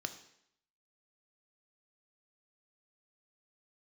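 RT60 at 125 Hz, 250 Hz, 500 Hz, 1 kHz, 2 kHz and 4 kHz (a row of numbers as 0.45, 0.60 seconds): 0.65, 0.70, 0.70, 0.75, 0.75, 0.70 seconds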